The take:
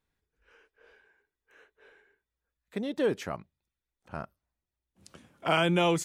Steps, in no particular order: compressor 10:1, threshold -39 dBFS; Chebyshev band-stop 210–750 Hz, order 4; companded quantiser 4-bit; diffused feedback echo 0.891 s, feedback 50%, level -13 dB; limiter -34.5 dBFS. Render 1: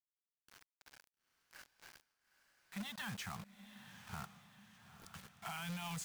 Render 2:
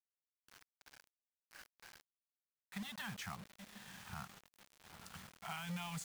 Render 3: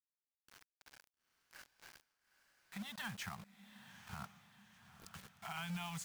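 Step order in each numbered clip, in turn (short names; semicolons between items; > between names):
Chebyshev band-stop > limiter > companded quantiser > diffused feedback echo > compressor; Chebyshev band-stop > compressor > diffused feedback echo > companded quantiser > limiter; Chebyshev band-stop > companded quantiser > compressor > limiter > diffused feedback echo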